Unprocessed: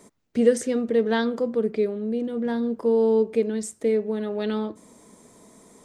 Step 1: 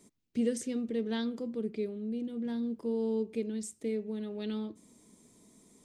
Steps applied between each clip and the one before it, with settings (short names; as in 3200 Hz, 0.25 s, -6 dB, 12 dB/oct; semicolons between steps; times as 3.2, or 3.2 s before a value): band shelf 920 Hz -8.5 dB 2.3 oct; gain -7.5 dB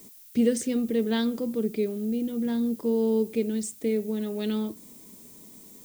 added noise violet -58 dBFS; gain +7.5 dB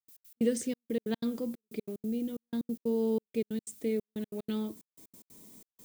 step gate ".x.x.xxxx." 184 bpm -60 dB; gain -5 dB